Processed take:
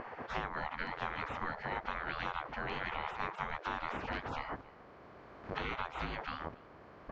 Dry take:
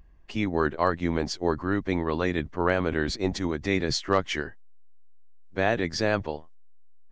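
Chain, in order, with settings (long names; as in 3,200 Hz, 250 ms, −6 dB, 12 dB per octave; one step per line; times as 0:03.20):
compressor on every frequency bin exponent 0.6
camcorder AGC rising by 5.9 dB per second
gate on every frequency bin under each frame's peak −20 dB weak
low-pass filter 1,500 Hz 12 dB per octave
spectral tilt −2 dB per octave
slap from a distant wall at 48 metres, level −23 dB
downward compressor, threshold −45 dBFS, peak gain reduction 10.5 dB
low-shelf EQ 320 Hz −5.5 dB
level +12 dB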